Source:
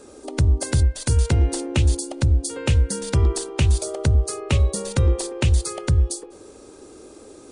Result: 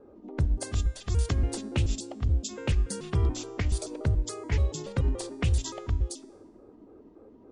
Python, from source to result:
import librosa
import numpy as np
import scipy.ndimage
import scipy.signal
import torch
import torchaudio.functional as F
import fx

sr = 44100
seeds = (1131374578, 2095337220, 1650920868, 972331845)

y = fx.pitch_trill(x, sr, semitones=-4.5, every_ms=143)
y = fx.env_lowpass(y, sr, base_hz=890.0, full_db=-15.0)
y = fx.comb_fb(y, sr, f0_hz=110.0, decay_s=0.97, harmonics='all', damping=0.0, mix_pct=40)
y = F.gain(torch.from_numpy(y), -3.0).numpy()